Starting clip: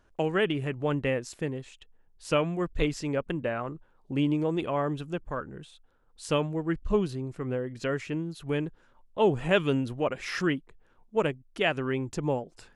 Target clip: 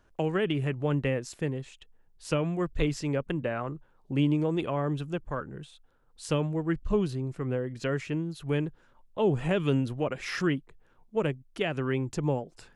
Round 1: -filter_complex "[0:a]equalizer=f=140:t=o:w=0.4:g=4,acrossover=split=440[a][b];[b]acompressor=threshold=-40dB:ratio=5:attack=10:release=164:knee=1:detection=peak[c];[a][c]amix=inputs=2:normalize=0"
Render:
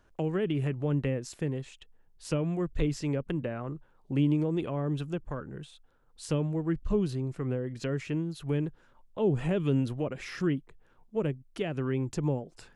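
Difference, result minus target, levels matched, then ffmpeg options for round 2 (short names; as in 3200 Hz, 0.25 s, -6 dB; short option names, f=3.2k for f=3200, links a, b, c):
compressor: peak gain reduction +8 dB
-filter_complex "[0:a]equalizer=f=140:t=o:w=0.4:g=4,acrossover=split=440[a][b];[b]acompressor=threshold=-30dB:ratio=5:attack=10:release=164:knee=1:detection=peak[c];[a][c]amix=inputs=2:normalize=0"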